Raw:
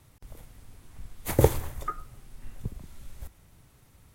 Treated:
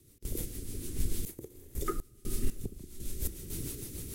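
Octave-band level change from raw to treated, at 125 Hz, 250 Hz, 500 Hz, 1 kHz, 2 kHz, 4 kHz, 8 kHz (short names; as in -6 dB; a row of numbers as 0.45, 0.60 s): -8.0, -4.5, -12.5, -9.5, -9.0, -1.0, +2.5 dB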